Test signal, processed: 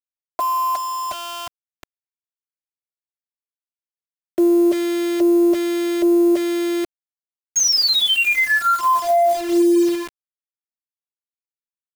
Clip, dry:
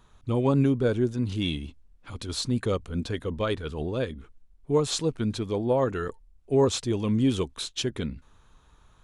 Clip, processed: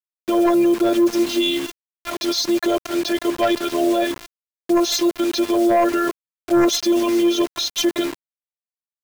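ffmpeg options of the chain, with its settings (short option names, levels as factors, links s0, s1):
-filter_complex "[0:a]acrossover=split=240[s0][s1];[s0]acompressor=threshold=0.00631:ratio=10[s2];[s2][s1]amix=inputs=2:normalize=0,afftfilt=real='hypot(re,im)*cos(PI*b)':imag='0':win_size=512:overlap=0.75,equalizer=f=590:t=o:w=0.33:g=14,afftfilt=real='re*between(b*sr/4096,130,6700)':imag='im*between(b*sr/4096,130,6700)':win_size=4096:overlap=0.75,crystalizer=i=1.5:c=0,acrusher=bits=7:mix=0:aa=0.000001,aeval=exprs='0.224*sin(PI/2*2.24*val(0)/0.224)':c=same,alimiter=limit=0.106:level=0:latency=1:release=11,lowshelf=f=350:g=2.5,volume=2.37"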